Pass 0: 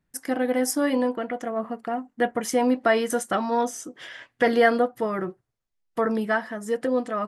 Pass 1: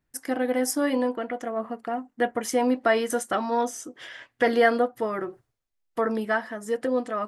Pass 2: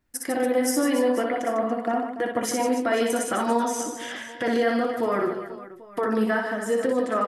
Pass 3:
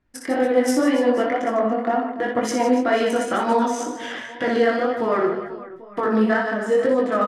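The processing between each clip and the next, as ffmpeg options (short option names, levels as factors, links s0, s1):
-af "equalizer=f=180:w=6.9:g=-13.5,areverse,acompressor=mode=upward:threshold=0.00708:ratio=2.5,areverse,volume=0.891"
-filter_complex "[0:a]alimiter=limit=0.0944:level=0:latency=1:release=119,flanger=delay=2.8:depth=8:regen=-54:speed=0.54:shape=triangular,asplit=2[s0][s1];[s1]aecho=0:1:60|150|285|487.5|791.2:0.631|0.398|0.251|0.158|0.1[s2];[s0][s2]amix=inputs=2:normalize=0,volume=2.51"
-af "flanger=delay=18.5:depth=5.4:speed=2,adynamicsmooth=sensitivity=4.5:basefreq=4300,aresample=32000,aresample=44100,volume=2.24"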